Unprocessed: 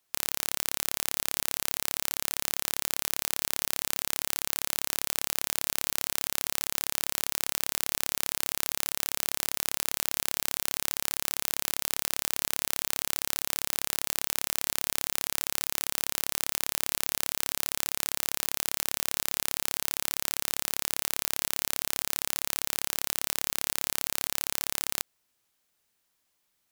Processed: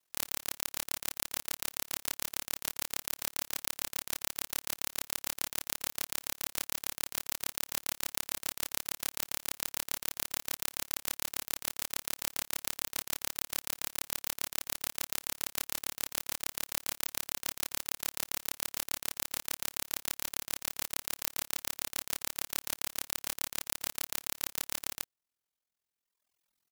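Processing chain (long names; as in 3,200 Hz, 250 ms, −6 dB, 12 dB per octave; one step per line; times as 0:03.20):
double-tracking delay 25 ms −8 dB
ring modulation 21 Hz
reverb reduction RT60 1.6 s
level −1.5 dB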